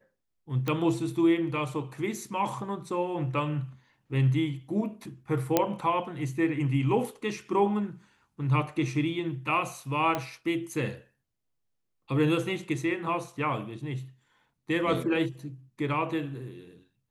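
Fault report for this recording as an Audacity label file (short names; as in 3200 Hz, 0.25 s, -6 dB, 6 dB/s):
0.680000	0.680000	pop -16 dBFS
5.570000	5.570000	pop -7 dBFS
10.150000	10.150000	pop -15 dBFS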